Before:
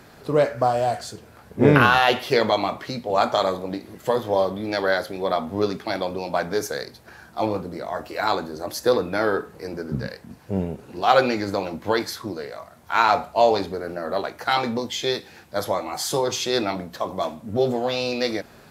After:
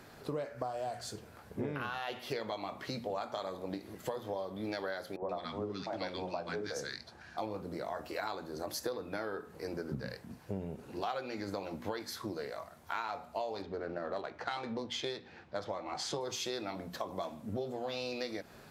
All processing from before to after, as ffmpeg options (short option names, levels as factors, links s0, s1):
-filter_complex "[0:a]asettb=1/sr,asplit=3[s0][s1][s2];[s0]atrim=end=5.164[s3];[s1]atrim=start=5.16:end=7.38,asetpts=PTS-STARTPTS,afade=t=in:d=0.004:c=qsin,afade=t=out:st=2.216:d=0.004:c=qsin,lowpass=6600,acrossover=split=400|1200[s4][s5][s6];[s4]adelay=60[s7];[s6]adelay=130[s8];[s7][s5][s8]amix=inputs=3:normalize=0,atrim=end_sample=97902[s9];[s2]atrim=start=7.376[s10];[s3][s9]acrossfade=d=0.004:c1=hsin:c2=qsin[s11];[s11][s10]acrossfade=d=0.004:c1=qsin:c2=hsin,asettb=1/sr,asplit=3[s12][s13][s14];[s12]atrim=end=13.624[s15];[s13]atrim=start=13.62:end=16.21,asetpts=PTS-STARTPTS,afade=t=in:d=0.004:c=qsin,afade=t=out:st=2.586:d=0.004:c=qsin,adynamicsmooth=sensitivity=5.5:basefreq=3600,lowpass=6800[s16];[s14]atrim=start=16.206[s17];[s15][s16]acrossfade=d=0.004:c1=hsin:c2=qsin[s18];[s18][s17]acrossfade=d=0.004:c1=qsin:c2=hsin,bandreject=f=60:t=h:w=6,bandreject=f=120:t=h:w=6,bandreject=f=180:t=h:w=6,bandreject=f=240:t=h:w=6,acompressor=threshold=0.0398:ratio=12,volume=0.501"